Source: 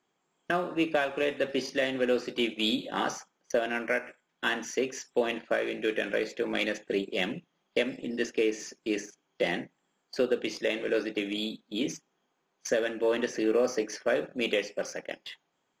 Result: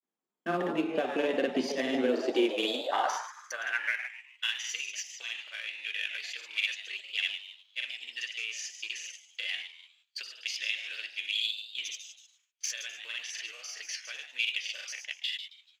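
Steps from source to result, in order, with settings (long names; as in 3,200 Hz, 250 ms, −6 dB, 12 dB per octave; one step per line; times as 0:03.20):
in parallel at −4.5 dB: soft clipping −32.5 dBFS, distortion −5 dB
on the sum: downward compressor 3 to 1, threshold −28 dBFS, peak gain reduction 6.5 dB
high-pass filter sweep 220 Hz → 2,700 Hz, 0:01.97–0:04.24
on a send: echo with shifted repeats 129 ms, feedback 33%, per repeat +150 Hz, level −9 dB
on the sum: noise gate with hold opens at −56 dBFS
granular cloud, spray 39 ms, pitch spread up and down by 0 semitones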